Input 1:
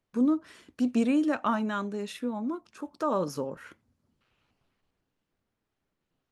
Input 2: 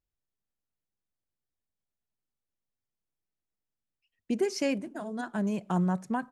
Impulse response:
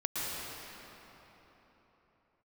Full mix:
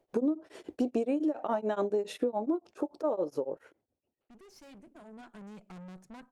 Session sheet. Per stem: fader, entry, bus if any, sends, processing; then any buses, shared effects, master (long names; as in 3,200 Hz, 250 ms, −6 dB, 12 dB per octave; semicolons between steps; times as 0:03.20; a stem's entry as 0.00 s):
+3.0 dB, 0.00 s, no send, flat-topped bell 510 Hz +14.5 dB; tremolo along a rectified sine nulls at 7.1 Hz; automatic ducking −21 dB, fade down 1.85 s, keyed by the second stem
0:04.45 −16.5 dB → 0:05.11 −8 dB, 0.00 s, no send, tube saturation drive 37 dB, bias 0.75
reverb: not used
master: downward compressor 12 to 1, threshold −26 dBFS, peak gain reduction 17.5 dB